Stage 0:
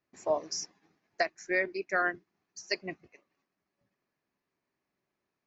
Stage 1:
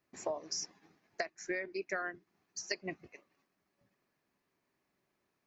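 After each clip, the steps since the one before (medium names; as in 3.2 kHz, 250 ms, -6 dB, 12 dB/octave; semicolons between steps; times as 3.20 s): compression 16:1, threshold -37 dBFS, peak gain reduction 15 dB; trim +3.5 dB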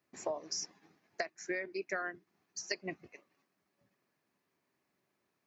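high-pass 85 Hz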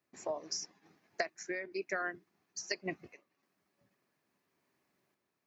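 random-step tremolo; trim +2.5 dB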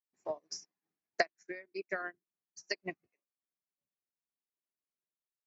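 upward expansion 2.5:1, over -52 dBFS; trim +6 dB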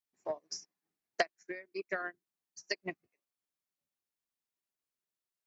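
transformer saturation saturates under 1.2 kHz; trim +1 dB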